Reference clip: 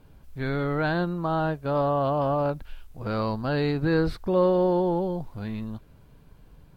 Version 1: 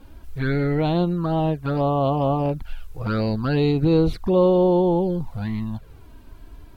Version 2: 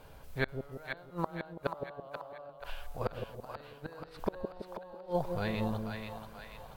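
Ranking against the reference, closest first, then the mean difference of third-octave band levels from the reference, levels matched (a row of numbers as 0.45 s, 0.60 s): 1, 2; 2.5 dB, 12.0 dB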